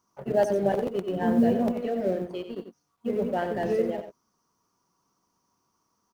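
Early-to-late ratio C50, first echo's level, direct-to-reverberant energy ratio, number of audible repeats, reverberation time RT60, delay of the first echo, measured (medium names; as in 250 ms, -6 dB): no reverb, -9.5 dB, no reverb, 1, no reverb, 91 ms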